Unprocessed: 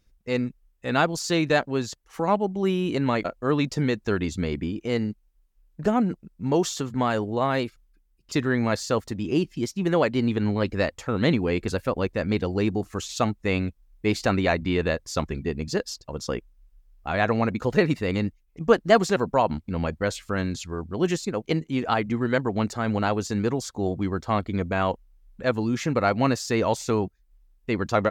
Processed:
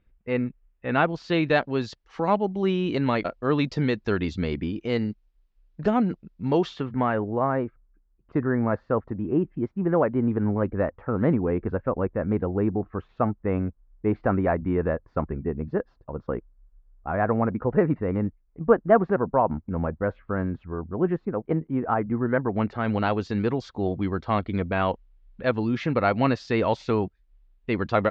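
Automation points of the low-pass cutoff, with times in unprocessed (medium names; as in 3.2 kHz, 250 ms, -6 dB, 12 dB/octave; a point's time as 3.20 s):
low-pass 24 dB/octave
0.90 s 2.7 kHz
1.84 s 4.7 kHz
6.49 s 4.7 kHz
6.82 s 2.8 kHz
7.54 s 1.5 kHz
22.24 s 1.5 kHz
22.96 s 3.9 kHz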